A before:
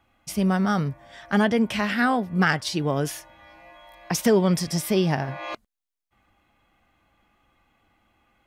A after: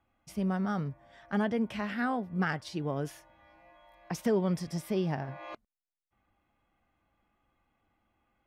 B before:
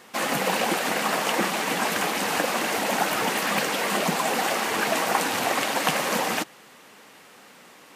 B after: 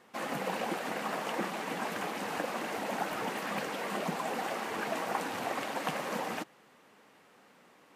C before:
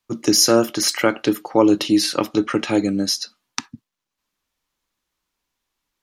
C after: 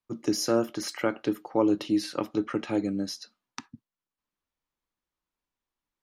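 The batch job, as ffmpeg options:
-af "highshelf=frequency=2400:gain=-9,volume=-8.5dB"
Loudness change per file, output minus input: −9.0, −11.0, −10.0 LU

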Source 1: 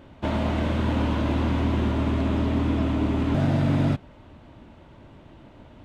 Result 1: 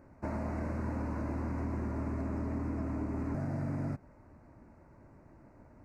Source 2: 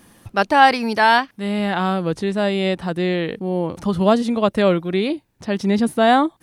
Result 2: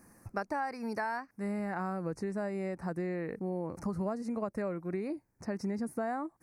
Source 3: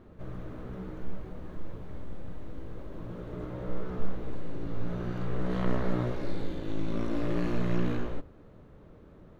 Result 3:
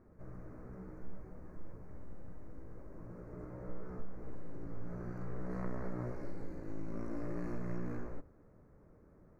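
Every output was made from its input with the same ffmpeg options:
-af "acompressor=threshold=-22dB:ratio=10,asuperstop=centerf=3300:order=4:qfactor=1.1,volume=-9dB"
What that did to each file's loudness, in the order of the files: −12.0, −17.5, −10.0 LU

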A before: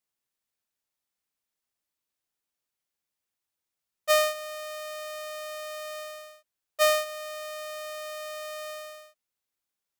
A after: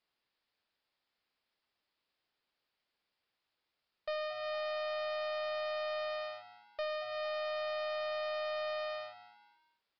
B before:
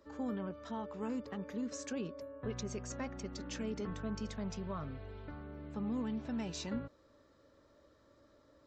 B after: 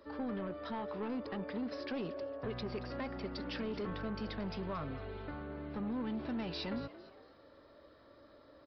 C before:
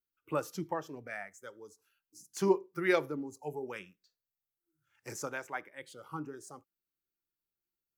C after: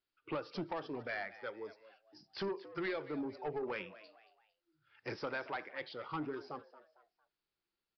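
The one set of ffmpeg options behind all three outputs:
-filter_complex "[0:a]bass=frequency=250:gain=-5,treble=frequency=4000:gain=0,acompressor=threshold=-37dB:ratio=16,asoftclip=type=tanh:threshold=-39dB,asplit=2[link_01][link_02];[link_02]asplit=3[link_03][link_04][link_05];[link_03]adelay=227,afreqshift=110,volume=-16dB[link_06];[link_04]adelay=454,afreqshift=220,volume=-24.6dB[link_07];[link_05]adelay=681,afreqshift=330,volume=-33.3dB[link_08];[link_06][link_07][link_08]amix=inputs=3:normalize=0[link_09];[link_01][link_09]amix=inputs=2:normalize=0,aresample=11025,aresample=44100,volume=6.5dB"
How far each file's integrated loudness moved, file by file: −7.0, +1.0, −6.0 LU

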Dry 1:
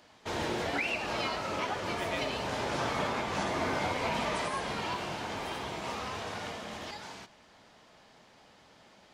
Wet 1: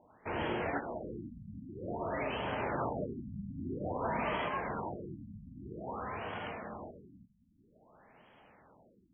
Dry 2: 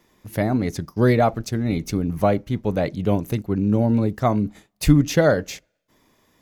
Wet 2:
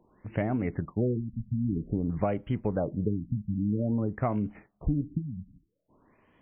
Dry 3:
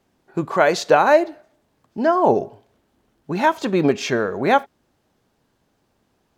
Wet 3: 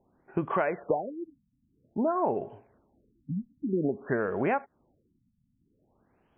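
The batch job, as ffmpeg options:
-af "acompressor=threshold=-23dB:ratio=6,afftfilt=real='re*lt(b*sr/1024,250*pow(3400/250,0.5+0.5*sin(2*PI*0.51*pts/sr)))':imag='im*lt(b*sr/1024,250*pow(3400/250,0.5+0.5*sin(2*PI*0.51*pts/sr)))':win_size=1024:overlap=0.75,volume=-1.5dB"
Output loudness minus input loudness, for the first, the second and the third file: −5.0, −9.5, −11.5 LU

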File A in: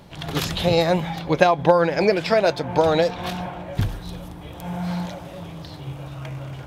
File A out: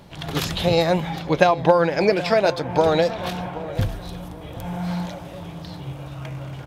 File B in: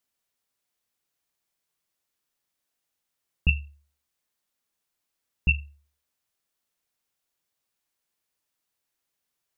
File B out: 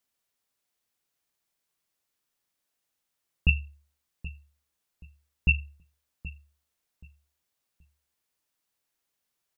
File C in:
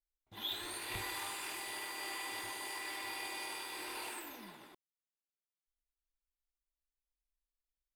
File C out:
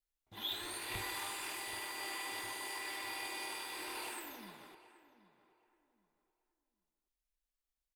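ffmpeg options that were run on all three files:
-filter_complex "[0:a]asplit=2[link_01][link_02];[link_02]adelay=777,lowpass=frequency=1700:poles=1,volume=-15dB,asplit=2[link_03][link_04];[link_04]adelay=777,lowpass=frequency=1700:poles=1,volume=0.28,asplit=2[link_05][link_06];[link_06]adelay=777,lowpass=frequency=1700:poles=1,volume=0.28[link_07];[link_01][link_03][link_05][link_07]amix=inputs=4:normalize=0"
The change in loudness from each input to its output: 0.0, 0.0, 0.0 LU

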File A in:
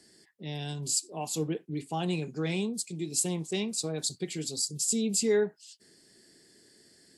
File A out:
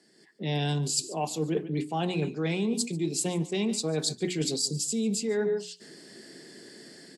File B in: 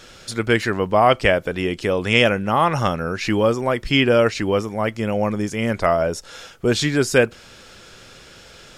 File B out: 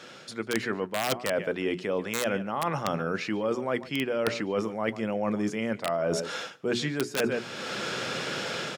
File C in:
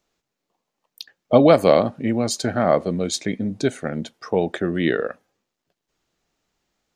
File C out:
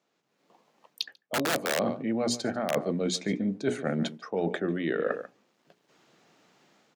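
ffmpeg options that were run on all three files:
-filter_complex "[0:a]lowpass=frequency=3200:poles=1,asplit=2[link_01][link_02];[link_02]aecho=0:1:144:0.112[link_03];[link_01][link_03]amix=inputs=2:normalize=0,aeval=exprs='(mod(2.11*val(0)+1,2)-1)/2.11':channel_layout=same,dynaudnorm=framelen=140:gausssize=5:maxgain=14.5dB,highpass=frequency=140:width=0.5412,highpass=frequency=140:width=1.3066,bandreject=frequency=60:width_type=h:width=6,bandreject=frequency=120:width_type=h:width=6,bandreject=frequency=180:width_type=h:width=6,bandreject=frequency=240:width_type=h:width=6,bandreject=frequency=300:width_type=h:width=6,bandreject=frequency=360:width_type=h:width=6,bandreject=frequency=420:width_type=h:width=6,areverse,acompressor=threshold=-25dB:ratio=12,areverse"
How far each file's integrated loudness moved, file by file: +1.5, −10.5, −9.5 LU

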